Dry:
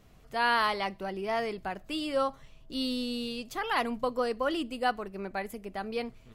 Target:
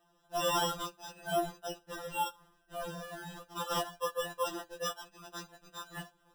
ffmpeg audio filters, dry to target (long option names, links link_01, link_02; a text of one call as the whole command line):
ffmpeg -i in.wav -filter_complex "[0:a]acrossover=split=530 5700:gain=0.0794 1 0.224[link_01][link_02][link_03];[link_01][link_02][link_03]amix=inputs=3:normalize=0,acrusher=samples=20:mix=1:aa=0.000001,afftfilt=real='re*2.83*eq(mod(b,8),0)':imag='im*2.83*eq(mod(b,8),0)':win_size=2048:overlap=0.75" out.wav